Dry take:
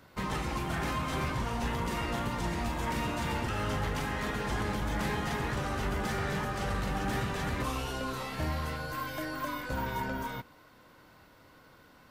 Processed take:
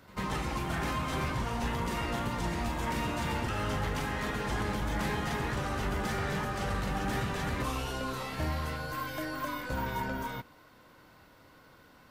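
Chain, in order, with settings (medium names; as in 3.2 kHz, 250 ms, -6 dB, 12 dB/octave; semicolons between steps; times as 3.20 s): pre-echo 93 ms -20.5 dB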